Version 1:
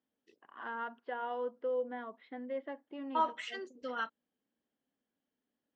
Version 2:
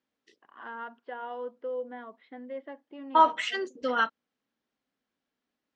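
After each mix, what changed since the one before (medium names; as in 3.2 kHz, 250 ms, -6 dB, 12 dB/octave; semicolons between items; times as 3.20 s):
second voice +11.0 dB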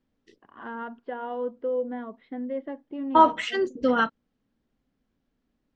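master: remove high-pass 940 Hz 6 dB/octave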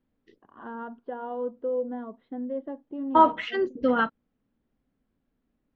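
first voice: add peaking EQ 2.2 kHz -13.5 dB 0.6 oct; master: add distance through air 220 m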